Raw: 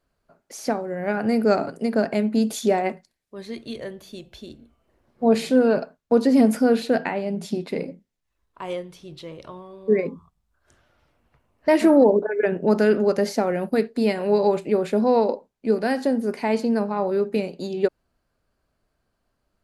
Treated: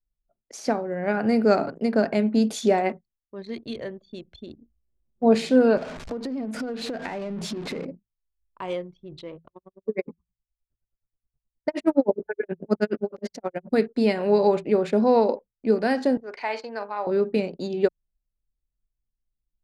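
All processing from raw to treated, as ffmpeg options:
-filter_complex "[0:a]asettb=1/sr,asplit=3[a][b][c];[a]atrim=end=5.774[d];[b]atrim=start=5.77:end=7.85,asetpts=PTS-STARTPTS,afade=t=in:d=0.004:c=qsin,afade=t=out:st=2.076:d=0.004:c=qsin,aeval=exprs='val(0)+0.5*0.0282*sgn(val(0))':c=same,acompressor=threshold=-27dB:ratio=12:attack=3.2:release=140:knee=1:detection=peak[e];[c]atrim=start=7.846[f];[d][e]acrossfade=d=0.004:c1=hsin:c2=qsin[g];[g][f]acrossfade=d=0.004:c1=qsin:c2=hsin,asettb=1/sr,asplit=3[h][i][j];[h]atrim=end=9.364[k];[i]atrim=start=9.36:end=13.71,asetpts=PTS-STARTPTS,afade=t=in:d=0.004:c=qsin,afade=t=out:st=4.346:d=0.004:c=qsin,bandreject=f=60:t=h:w=6,bandreject=f=120:t=h:w=6,bandreject=f=180:t=h:w=6,aeval=exprs='val(0)*pow(10,-37*(0.5-0.5*cos(2*PI*9.5*n/s))/20)':c=same[l];[j]atrim=start=13.706[m];[k][l]acrossfade=d=0.004:c1=hsin:c2=qsin[n];[n][m]acrossfade=d=0.004:c1=qsin:c2=hsin,asettb=1/sr,asplit=3[o][p][q];[o]atrim=end=16.174[r];[p]atrim=start=16.17:end=17.07,asetpts=PTS-STARTPTS,afade=t=in:d=0.004:c=qsin,afade=t=out:st=0.896:d=0.004:c=qsin,highpass=790,lowpass=5.7k,asplit=2[s][t];[t]adelay=44,volume=-13.5dB[u];[s][u]amix=inputs=2:normalize=0,atrim=end_sample=39690[v];[q]atrim=start=17.066[w];[r][v]acrossfade=d=0.004:c1=hsin:c2=qsin[x];[x][w]acrossfade=d=0.004:c1=qsin:c2=hsin,lowpass=7.8k,bandreject=f=54.47:t=h:w=4,bandreject=f=108.94:t=h:w=4,bandreject=f=163.41:t=h:w=4,anlmdn=0.251"

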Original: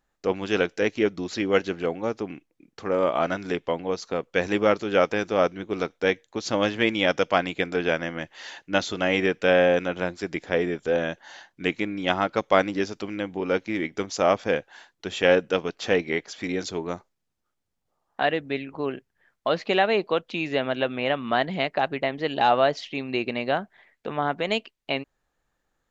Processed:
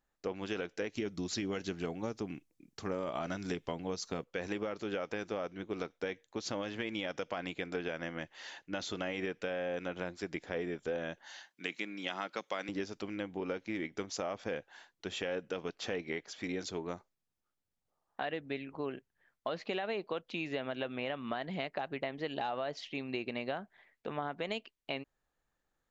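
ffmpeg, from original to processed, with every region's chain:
-filter_complex "[0:a]asettb=1/sr,asplit=3[a][b][c];[a]atrim=end=0.944[d];[b]atrim=start=0.94:end=4.24,asetpts=PTS-STARTPTS,afade=t=in:d=0.004:c=qsin,afade=t=out:st=3.296:d=0.004:c=qsin,bass=f=250:g=7,treble=f=4k:g=10,bandreject=f=510:w=12[e];[c]atrim=start=4.236[f];[d][e]acrossfade=d=0.004:c1=hsin:c2=qsin[g];[g][f]acrossfade=d=0.004:c1=qsin:c2=hsin,asettb=1/sr,asplit=3[h][i][j];[h]atrim=end=11.264[k];[i]atrim=start=11.26:end=12.69,asetpts=PTS-STARTPTS,afade=t=in:d=0.004:c=qsin,afade=t=out:st=1.426:d=0.004:c=qsin,highpass=f=160:w=0.5412,highpass=f=160:w=1.3066,tiltshelf=f=1.4k:g=-5.5[l];[j]atrim=start=12.686[m];[k][l]acrossfade=d=0.004:c1=hsin:c2=qsin[n];[n][m]acrossfade=d=0.004:c1=qsin:c2=hsin,alimiter=limit=-12.5dB:level=0:latency=1:release=48,acompressor=threshold=-25dB:ratio=6,volume=-7.5dB"

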